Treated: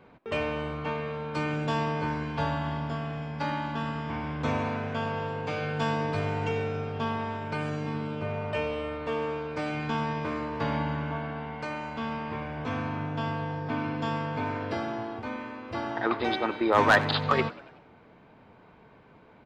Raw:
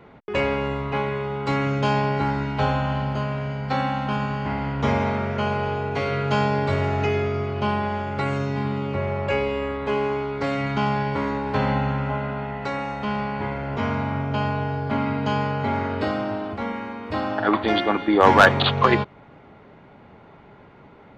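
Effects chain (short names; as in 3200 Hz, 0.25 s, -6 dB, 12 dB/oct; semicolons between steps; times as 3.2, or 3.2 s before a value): speed mistake 44.1 kHz file played as 48 kHz; frequency-shifting echo 94 ms, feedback 54%, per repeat +88 Hz, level -19.5 dB; gain -7 dB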